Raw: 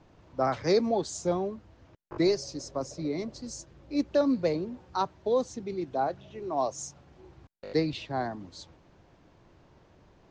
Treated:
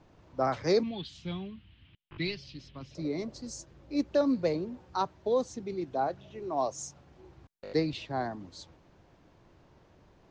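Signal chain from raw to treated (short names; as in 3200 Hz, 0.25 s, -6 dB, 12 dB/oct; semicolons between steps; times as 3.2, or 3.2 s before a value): 0.83–2.95 EQ curve 190 Hz 0 dB, 550 Hz -19 dB, 1500 Hz -5 dB, 3100 Hz +14 dB, 6700 Hz -23 dB; gain -1.5 dB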